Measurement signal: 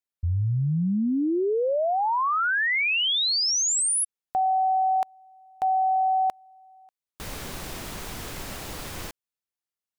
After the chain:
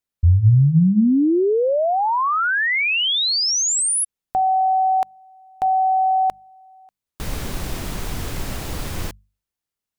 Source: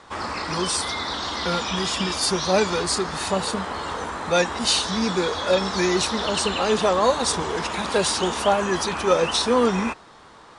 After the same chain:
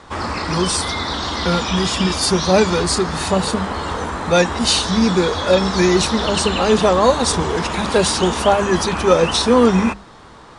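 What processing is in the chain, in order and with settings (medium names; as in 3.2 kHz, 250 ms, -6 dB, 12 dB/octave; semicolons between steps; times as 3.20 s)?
bass shelf 230 Hz +10 dB; hum notches 50/100/150/200 Hz; trim +4 dB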